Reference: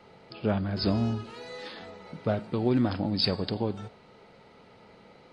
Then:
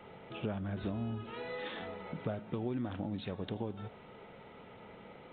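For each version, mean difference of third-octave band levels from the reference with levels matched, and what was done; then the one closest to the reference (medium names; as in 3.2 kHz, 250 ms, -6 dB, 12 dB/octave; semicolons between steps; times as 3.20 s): 6.5 dB: compression 4:1, threshold -37 dBFS, peak gain reduction 14 dB; resampled via 8 kHz; trim +1.5 dB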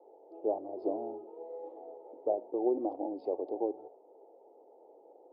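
14.0 dB: local Wiener filter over 9 samples; elliptic band-pass 320–820 Hz, stop band 40 dB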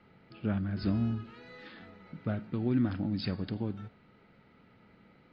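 4.0 dB: Bessel low-pass 2 kHz, order 2; high-order bell 650 Hz -9 dB; trim -2.5 dB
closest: third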